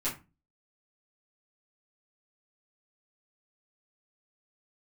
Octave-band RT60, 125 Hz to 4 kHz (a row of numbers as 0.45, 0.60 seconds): 0.45, 0.45, 0.30, 0.30, 0.25, 0.20 seconds